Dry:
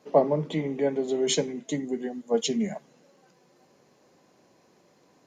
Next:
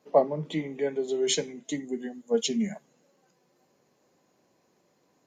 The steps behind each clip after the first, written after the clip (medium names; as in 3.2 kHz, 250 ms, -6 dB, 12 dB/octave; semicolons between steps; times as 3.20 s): spectral noise reduction 7 dB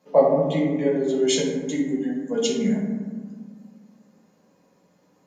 reverberation RT60 1.5 s, pre-delay 3 ms, DRR -3.5 dB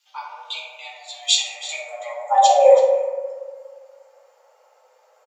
frequency shift +330 Hz; high-pass sweep 3.3 kHz -> 92 Hz, 1.36–4.00 s; delay 327 ms -16 dB; trim +3.5 dB